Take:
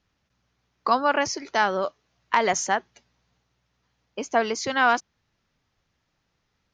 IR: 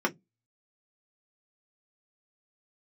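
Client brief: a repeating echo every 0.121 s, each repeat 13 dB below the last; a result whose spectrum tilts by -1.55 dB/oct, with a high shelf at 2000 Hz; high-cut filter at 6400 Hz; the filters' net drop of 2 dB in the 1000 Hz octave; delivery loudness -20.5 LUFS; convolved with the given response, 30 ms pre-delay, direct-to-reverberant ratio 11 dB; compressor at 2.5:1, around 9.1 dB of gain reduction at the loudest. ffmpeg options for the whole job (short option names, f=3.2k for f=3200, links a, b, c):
-filter_complex "[0:a]lowpass=6.4k,equalizer=f=1k:t=o:g=-4,highshelf=f=2k:g=6,acompressor=threshold=-30dB:ratio=2.5,aecho=1:1:121|242|363:0.224|0.0493|0.0108,asplit=2[a][b];[1:a]atrim=start_sample=2205,adelay=30[c];[b][c]afir=irnorm=-1:irlink=0,volume=-21.5dB[d];[a][d]amix=inputs=2:normalize=0,volume=11dB"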